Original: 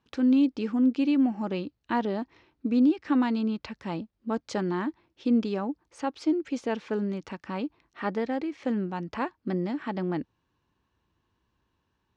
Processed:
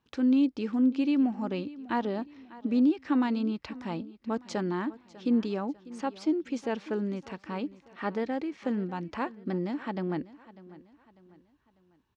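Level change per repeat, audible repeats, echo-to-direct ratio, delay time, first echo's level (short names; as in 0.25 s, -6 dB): -8.0 dB, 3, -18.0 dB, 0.597 s, -18.5 dB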